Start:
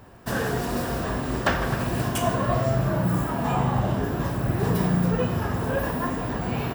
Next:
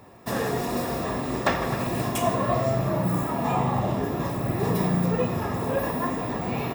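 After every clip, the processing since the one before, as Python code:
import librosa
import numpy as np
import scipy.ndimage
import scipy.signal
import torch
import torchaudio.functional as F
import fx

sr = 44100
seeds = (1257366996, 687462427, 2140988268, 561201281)

y = fx.notch_comb(x, sr, f0_hz=1500.0)
y = F.gain(torch.from_numpy(y), 1.0).numpy()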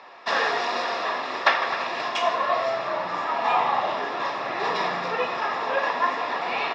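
y = scipy.signal.sosfilt(scipy.signal.butter(2, 940.0, 'highpass', fs=sr, output='sos'), x)
y = fx.rider(y, sr, range_db=10, speed_s=2.0)
y = scipy.signal.sosfilt(scipy.signal.butter(6, 5100.0, 'lowpass', fs=sr, output='sos'), y)
y = F.gain(torch.from_numpy(y), 8.5).numpy()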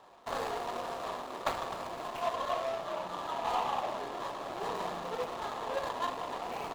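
y = scipy.ndimage.median_filter(x, 25, mode='constant')
y = F.gain(torch.from_numpy(y), -7.5).numpy()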